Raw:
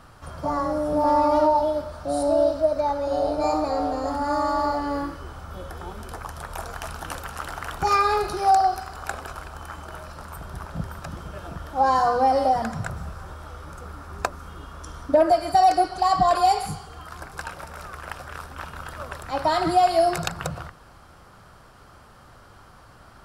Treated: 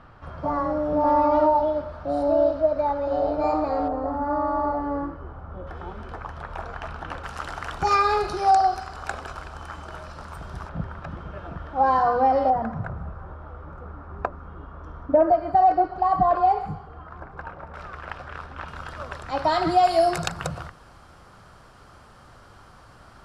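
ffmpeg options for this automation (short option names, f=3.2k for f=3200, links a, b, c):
-af "asetnsamples=n=441:p=0,asendcmd='3.88 lowpass f 1200;5.67 lowpass f 2600;7.24 lowpass f 6500;10.69 lowpass f 2500;12.5 lowpass f 1300;17.74 lowpass f 3300;18.68 lowpass f 5800;19.85 lowpass f 10000',lowpass=2.6k"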